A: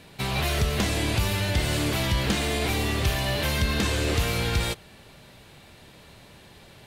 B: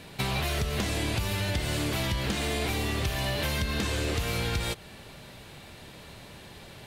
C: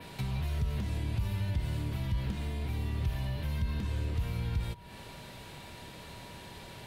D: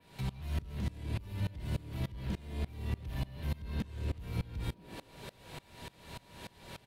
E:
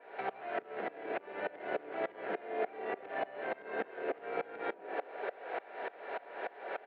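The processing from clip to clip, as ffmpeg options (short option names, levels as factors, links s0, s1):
-af "acompressor=threshold=0.0355:ratio=6,volume=1.41"
-filter_complex "[0:a]adynamicequalizer=threshold=0.00282:dfrequency=6900:dqfactor=1.1:tfrequency=6900:tqfactor=1.1:attack=5:release=100:ratio=0.375:range=3:mode=cutabove:tftype=bell,acrossover=split=190[s0][s1];[s1]acompressor=threshold=0.00631:ratio=10[s2];[s0][s2]amix=inputs=2:normalize=0,aeval=exprs='val(0)+0.00178*sin(2*PI*960*n/s)':c=same"
-filter_complex "[0:a]asplit=7[s0][s1][s2][s3][s4][s5][s6];[s1]adelay=220,afreqshift=110,volume=0.141[s7];[s2]adelay=440,afreqshift=220,volume=0.0891[s8];[s3]adelay=660,afreqshift=330,volume=0.0562[s9];[s4]adelay=880,afreqshift=440,volume=0.0355[s10];[s5]adelay=1100,afreqshift=550,volume=0.0221[s11];[s6]adelay=1320,afreqshift=660,volume=0.014[s12];[s0][s7][s8][s9][s10][s11][s12]amix=inputs=7:normalize=0,asoftclip=type=tanh:threshold=0.0562,aeval=exprs='val(0)*pow(10,-24*if(lt(mod(-3.4*n/s,1),2*abs(-3.4)/1000),1-mod(-3.4*n/s,1)/(2*abs(-3.4)/1000),(mod(-3.4*n/s,1)-2*abs(-3.4)/1000)/(1-2*abs(-3.4)/1000))/20)':c=same,volume=1.58"
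-af "highpass=f=420:w=0.5412,highpass=f=420:w=1.3066,equalizer=f=430:t=q:w=4:g=5,equalizer=f=730:t=q:w=4:g=9,equalizer=f=1000:t=q:w=4:g=-8,equalizer=f=1500:t=q:w=4:g=4,lowpass=f=2000:w=0.5412,lowpass=f=2000:w=1.3066,volume=3.55"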